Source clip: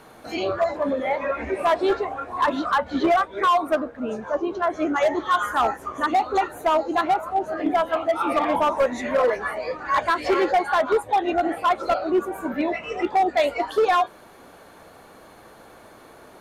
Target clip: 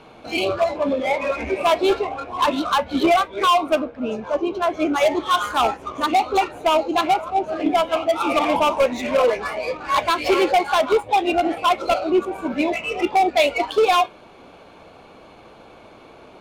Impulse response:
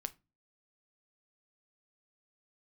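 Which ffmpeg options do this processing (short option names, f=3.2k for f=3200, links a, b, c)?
-filter_complex "[0:a]adynamicsmooth=sensitivity=7.5:basefreq=3.2k,asplit=2[a][b];[b]highpass=f=2.3k:t=q:w=3.4[c];[1:a]atrim=start_sample=2205,highshelf=f=8.8k:g=10[d];[c][d]afir=irnorm=-1:irlink=0,volume=-3.5dB[e];[a][e]amix=inputs=2:normalize=0,volume=3dB"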